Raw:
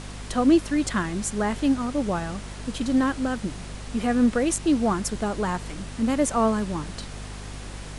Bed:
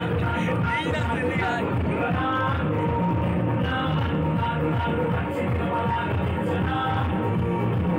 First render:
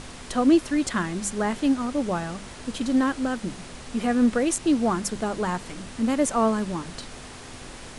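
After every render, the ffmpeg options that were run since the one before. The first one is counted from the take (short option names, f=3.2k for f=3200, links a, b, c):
-af "bandreject=f=50:t=h:w=6,bandreject=f=100:t=h:w=6,bandreject=f=150:t=h:w=6,bandreject=f=200:t=h:w=6"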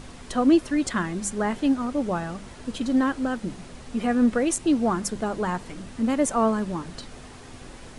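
-af "afftdn=nr=6:nf=-41"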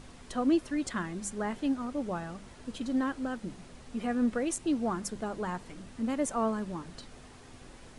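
-af "volume=-8dB"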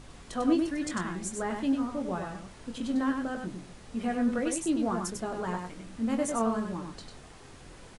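-filter_complex "[0:a]asplit=2[a][b];[b]adelay=22,volume=-8dB[c];[a][c]amix=inputs=2:normalize=0,asplit=2[d][e];[e]aecho=0:1:98:0.562[f];[d][f]amix=inputs=2:normalize=0"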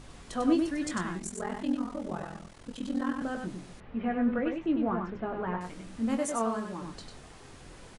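-filter_complex "[0:a]asettb=1/sr,asplit=3[a][b][c];[a]atrim=end=1.184[d];[b]atrim=start=1.18:end=3.22,asetpts=PTS-STARTPTS,afade=t=in:d=0.004:c=qsin,afade=t=out:st=2.036:d=0.004:c=qsin,aeval=exprs='val(0)*sin(2*PI*21*n/s)':c=same[e];[c]atrim=start=3.216[f];[d][e]acrossfade=d=0.004:c1=hsin:c2=qsin[g];[g][f]acrossfade=d=0.004:c1=qsin:c2=hsin,asettb=1/sr,asplit=3[h][i][j];[h]atrim=end=3.804[k];[i]atrim=start=3.8:end=5.61,asetpts=PTS-STARTPTS,afade=t=in:d=0.004:c=qsin,afade=t=out:st=1.806:d=0.004:c=qsin,lowpass=f=2.7k:w=0.5412,lowpass=f=2.7k:w=1.3066[l];[j]atrim=start=5.606[m];[k][l]acrossfade=d=0.004:c1=hsin:c2=qsin[n];[n][m]acrossfade=d=0.004:c1=qsin:c2=hsin,asettb=1/sr,asplit=3[o][p][q];[o]atrim=end=6.174[r];[p]atrim=start=6.17:end=6.82,asetpts=PTS-STARTPTS,afade=t=in:d=0.004:c=qsin,afade=t=out:st=0.646:d=0.004:c=qsin,lowshelf=f=160:g=-11.5[s];[q]atrim=start=6.816[t];[r][s]acrossfade=d=0.004:c1=hsin:c2=qsin[u];[u][t]acrossfade=d=0.004:c1=qsin:c2=hsin"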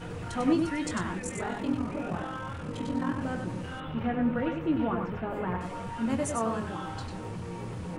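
-filter_complex "[1:a]volume=-14dB[a];[0:a][a]amix=inputs=2:normalize=0"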